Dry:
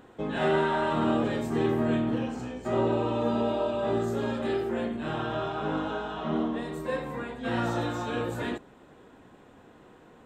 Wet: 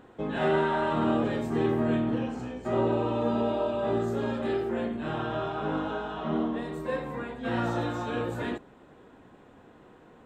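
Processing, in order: treble shelf 4.1 kHz -6 dB

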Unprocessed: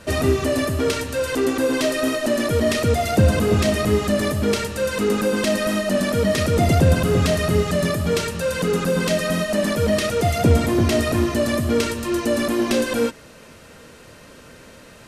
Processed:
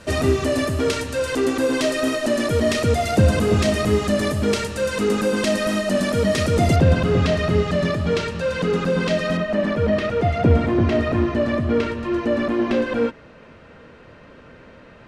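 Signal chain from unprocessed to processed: low-pass 9.7 kHz 12 dB/octave, from 6.76 s 4.2 kHz, from 9.37 s 2.4 kHz

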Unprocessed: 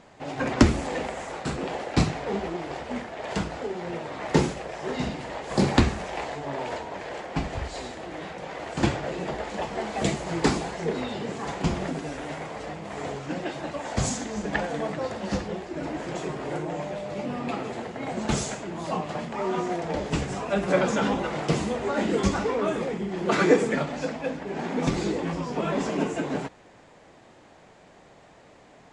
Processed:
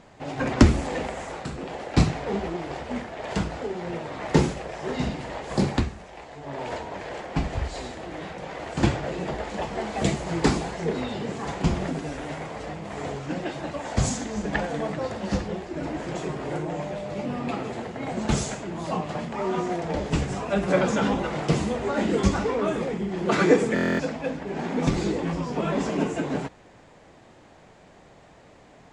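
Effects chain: bass shelf 150 Hz +6 dB; 1.31–1.94 s: compression, threshold -30 dBFS, peak gain reduction 7 dB; 5.45–6.73 s: dip -11 dB, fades 0.44 s; buffer glitch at 23.74 s, samples 1024, times 10

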